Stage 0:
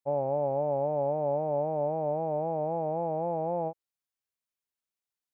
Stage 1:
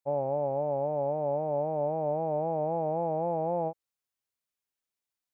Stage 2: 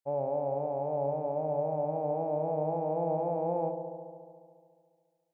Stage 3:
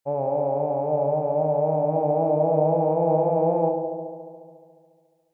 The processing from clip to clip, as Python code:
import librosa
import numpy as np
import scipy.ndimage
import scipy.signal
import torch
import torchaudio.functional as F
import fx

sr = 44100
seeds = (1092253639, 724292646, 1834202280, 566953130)

y1 = fx.rider(x, sr, range_db=10, speed_s=0.5)
y2 = fx.echo_wet_lowpass(y1, sr, ms=71, feedback_pct=79, hz=840.0, wet_db=-7.5)
y2 = y2 * 10.0 ** (-3.0 / 20.0)
y3 = fx.room_shoebox(y2, sr, seeds[0], volume_m3=520.0, walls='mixed', distance_m=0.57)
y3 = y3 * 10.0 ** (7.5 / 20.0)